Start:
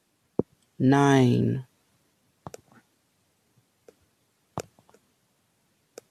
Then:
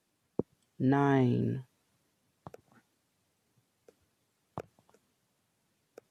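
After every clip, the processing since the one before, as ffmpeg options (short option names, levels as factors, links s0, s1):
-filter_complex "[0:a]acrossover=split=2600[s0][s1];[s1]acompressor=threshold=0.00224:ratio=4:attack=1:release=60[s2];[s0][s2]amix=inputs=2:normalize=0,volume=0.447"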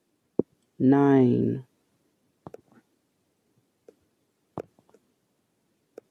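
-af "equalizer=f=330:w=0.81:g=10"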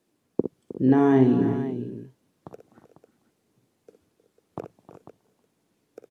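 -af "aecho=1:1:45|61|312|352|373|497:0.15|0.398|0.188|0.106|0.168|0.237"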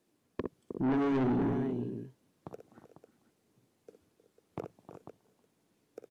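-af "asoftclip=type=tanh:threshold=0.0668,volume=0.75"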